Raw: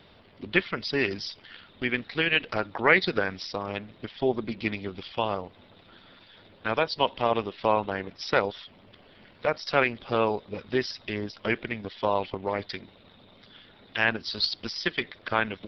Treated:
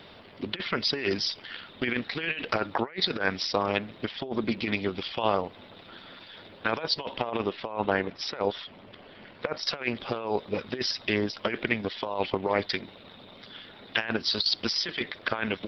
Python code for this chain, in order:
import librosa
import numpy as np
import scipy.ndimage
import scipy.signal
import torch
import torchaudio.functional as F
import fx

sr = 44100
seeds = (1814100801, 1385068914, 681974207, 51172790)

y = fx.high_shelf(x, sr, hz=4200.0, db=-7.5, at=(7.16, 9.63))
y = fx.over_compress(y, sr, threshold_db=-29.0, ratio=-0.5)
y = fx.low_shelf(y, sr, hz=120.0, db=-9.0)
y = y * librosa.db_to_amplitude(3.0)